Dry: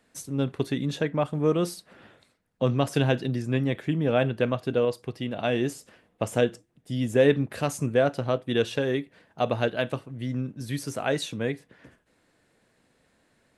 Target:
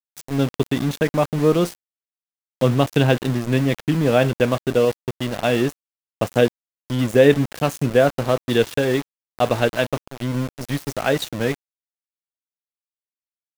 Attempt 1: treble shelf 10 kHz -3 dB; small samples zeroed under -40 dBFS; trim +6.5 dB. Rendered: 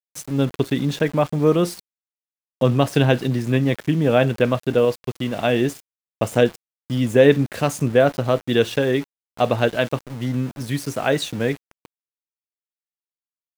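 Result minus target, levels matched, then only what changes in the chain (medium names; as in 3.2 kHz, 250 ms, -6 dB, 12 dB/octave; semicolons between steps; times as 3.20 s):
small samples zeroed: distortion -9 dB
change: small samples zeroed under -32 dBFS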